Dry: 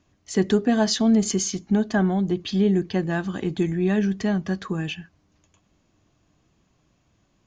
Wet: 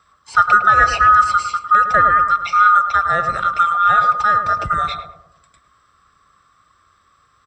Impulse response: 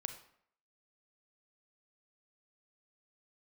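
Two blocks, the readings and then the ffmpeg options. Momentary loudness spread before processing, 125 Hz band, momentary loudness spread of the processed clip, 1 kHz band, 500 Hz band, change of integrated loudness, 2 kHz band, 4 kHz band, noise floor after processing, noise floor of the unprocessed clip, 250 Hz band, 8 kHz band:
9 LU, −7.5 dB, 8 LU, +23.5 dB, −4.0 dB, +9.0 dB, +17.5 dB, 0.0 dB, −59 dBFS, −67 dBFS, −20.0 dB, can't be measured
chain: -filter_complex "[0:a]afftfilt=real='real(if(lt(b,960),b+48*(1-2*mod(floor(b/48),2)),b),0)':imag='imag(if(lt(b,960),b+48*(1-2*mod(floor(b/48),2)),b),0)':win_size=2048:overlap=0.75,acrossover=split=3500[link_01][link_02];[link_02]acompressor=threshold=-47dB:ratio=4:attack=1:release=60[link_03];[link_01][link_03]amix=inputs=2:normalize=0,highpass=50,lowshelf=frequency=88:gain=12,asplit=2[link_04][link_05];[link_05]adelay=106,lowpass=frequency=920:poles=1,volume=-5dB,asplit=2[link_06][link_07];[link_07]adelay=106,lowpass=frequency=920:poles=1,volume=0.52,asplit=2[link_08][link_09];[link_09]adelay=106,lowpass=frequency=920:poles=1,volume=0.52,asplit=2[link_10][link_11];[link_11]adelay=106,lowpass=frequency=920:poles=1,volume=0.52,asplit=2[link_12][link_13];[link_13]adelay=106,lowpass=frequency=920:poles=1,volume=0.52,asplit=2[link_14][link_15];[link_15]adelay=106,lowpass=frequency=920:poles=1,volume=0.52,asplit=2[link_16][link_17];[link_17]adelay=106,lowpass=frequency=920:poles=1,volume=0.52[link_18];[link_06][link_08][link_10][link_12][link_14][link_16][link_18]amix=inputs=7:normalize=0[link_19];[link_04][link_19]amix=inputs=2:normalize=0,volume=7.5dB"

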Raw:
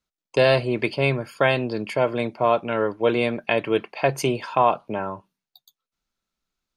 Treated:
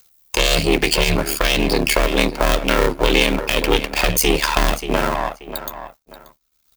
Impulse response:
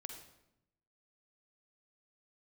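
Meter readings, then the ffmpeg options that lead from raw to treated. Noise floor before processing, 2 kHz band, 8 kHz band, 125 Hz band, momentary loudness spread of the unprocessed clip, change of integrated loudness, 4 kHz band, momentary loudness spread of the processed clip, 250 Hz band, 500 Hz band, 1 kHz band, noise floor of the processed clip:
below −85 dBFS, +7.0 dB, +18.5 dB, +3.0 dB, 8 LU, +5.0 dB, +13.0 dB, 9 LU, +5.5 dB, +1.0 dB, +2.0 dB, −65 dBFS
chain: -filter_complex "[0:a]aeval=exprs='if(lt(val(0),0),0.251*val(0),val(0))':channel_layout=same,lowshelf=frequency=85:gain=10.5,asplit=2[link_01][link_02];[link_02]adelay=583,lowpass=frequency=3900:poles=1,volume=-17dB,asplit=2[link_03][link_04];[link_04]adelay=583,lowpass=frequency=3900:poles=1,volume=0.22[link_05];[link_01][link_03][link_05]amix=inputs=3:normalize=0,acrossover=split=430|2200[link_06][link_07][link_08];[link_07]acompressor=threshold=-35dB:ratio=6[link_09];[link_06][link_09][link_08]amix=inputs=3:normalize=0,agate=range=-33dB:threshold=-48dB:ratio=3:detection=peak,asoftclip=type=tanh:threshold=-17dB,aeval=exprs='val(0)*sin(2*PI*37*n/s)':channel_layout=same,aemphasis=mode=production:type=bsi,acompressor=mode=upward:threshold=-46dB:ratio=2.5,alimiter=level_in=21.5dB:limit=-1dB:release=50:level=0:latency=1,volume=-1dB"

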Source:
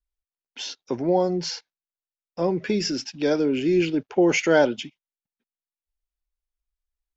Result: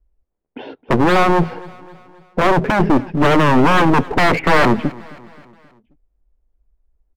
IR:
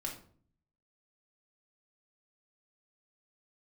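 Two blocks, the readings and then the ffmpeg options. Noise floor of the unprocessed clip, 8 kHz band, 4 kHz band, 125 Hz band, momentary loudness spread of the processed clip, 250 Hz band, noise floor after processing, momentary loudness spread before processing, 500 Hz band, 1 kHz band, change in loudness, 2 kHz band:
below −85 dBFS, can't be measured, +4.5 dB, +13.5 dB, 9 LU, +7.0 dB, −71 dBFS, 15 LU, +4.5 dB, +16.0 dB, +7.5 dB, +11.5 dB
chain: -filter_complex "[0:a]acrossover=split=670[link_01][link_02];[link_01]aeval=exprs='0.299*sin(PI/2*5.62*val(0)/0.299)':channel_layout=same[link_03];[link_03][link_02]amix=inputs=2:normalize=0,lowpass=frequency=2500:width=0.5412,lowpass=frequency=2500:width=1.3066,aemphasis=mode=reproduction:type=75kf,aeval=exprs='clip(val(0),-1,0.0447)':channel_layout=same,aecho=1:1:265|530|795|1060:0.0841|0.0438|0.0228|0.0118,volume=5.5dB"

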